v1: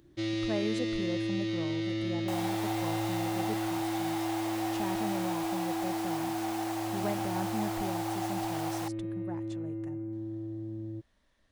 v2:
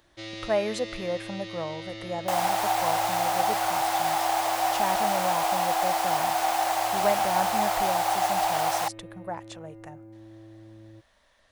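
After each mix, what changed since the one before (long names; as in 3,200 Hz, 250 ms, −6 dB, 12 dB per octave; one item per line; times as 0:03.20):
speech +10.0 dB
second sound +10.5 dB
master: add low shelf with overshoot 440 Hz −8.5 dB, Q 1.5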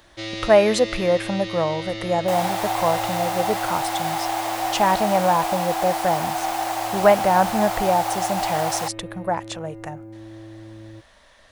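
speech +11.0 dB
first sound +7.5 dB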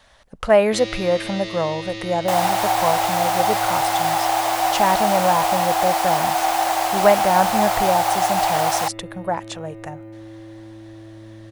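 first sound: entry +0.55 s
second sound +5.5 dB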